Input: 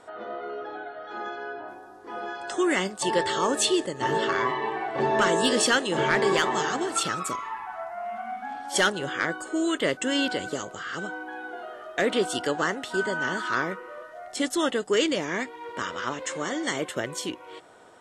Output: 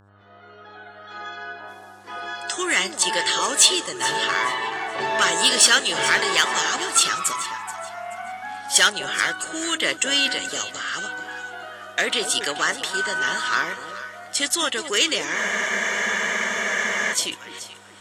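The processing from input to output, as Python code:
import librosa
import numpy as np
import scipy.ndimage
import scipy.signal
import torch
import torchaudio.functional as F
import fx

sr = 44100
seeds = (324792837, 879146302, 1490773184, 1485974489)

p1 = fx.fade_in_head(x, sr, length_s=1.81)
p2 = fx.dmg_buzz(p1, sr, base_hz=100.0, harmonics=17, level_db=-48.0, tilt_db=-8, odd_only=False)
p3 = np.clip(p2, -10.0 ** (-23.0 / 20.0), 10.0 ** (-23.0 / 20.0))
p4 = p2 + F.gain(torch.from_numpy(p3), -12.0).numpy()
p5 = fx.tilt_shelf(p4, sr, db=-10.0, hz=970.0)
p6 = p5 + fx.echo_alternate(p5, sr, ms=215, hz=1000.0, feedback_pct=53, wet_db=-8.5, dry=0)
y = fx.spec_freeze(p6, sr, seeds[0], at_s=15.37, hold_s=1.76)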